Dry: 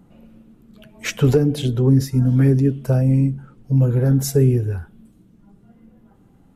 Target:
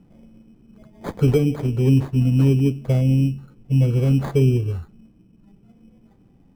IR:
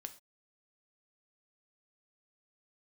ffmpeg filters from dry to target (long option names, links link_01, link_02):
-af "acrusher=samples=16:mix=1:aa=0.000001,tiltshelf=frequency=1400:gain=6,volume=-7dB"